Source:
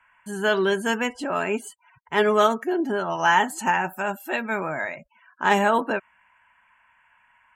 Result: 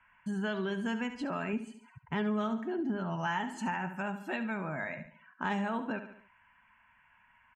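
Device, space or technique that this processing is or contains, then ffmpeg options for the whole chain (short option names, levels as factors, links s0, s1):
jukebox: -filter_complex "[0:a]asettb=1/sr,asplit=3[s0][s1][s2];[s0]atrim=end=1.534[s3];[s1]atrim=start=1.53:end=3.27,asetpts=PTS-STARTPTS,afade=t=in:d=0.004:c=qsin,afade=t=out:st=1.736:d=0.004:c=qsin,bass=f=250:g=6,treble=f=4000:g=-3[s4];[s2]atrim=start=3.266[s5];[s3][s4]acrossfade=d=0.004:c1=hsin:c2=qsin[s6];[s6][s5]acrossfade=d=0.004:c1=qsin:c2=hsin,lowpass=5400,lowshelf=f=290:t=q:w=1.5:g=7,aecho=1:1:71|142|213|284:0.251|0.0929|0.0344|0.0127,acompressor=threshold=0.0355:ratio=3,volume=0.596"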